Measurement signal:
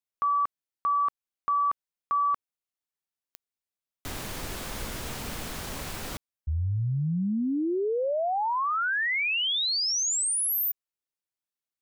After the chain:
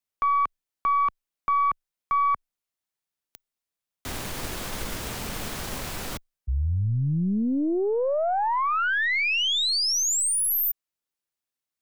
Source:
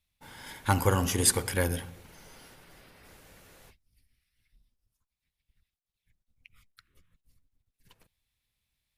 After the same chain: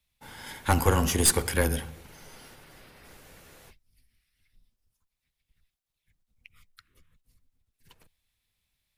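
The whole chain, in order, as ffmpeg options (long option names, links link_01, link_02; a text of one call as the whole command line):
ffmpeg -i in.wav -af "afreqshift=-13,aeval=exprs='(tanh(6.31*val(0)+0.5)-tanh(0.5))/6.31':channel_layout=same,volume=5dB" out.wav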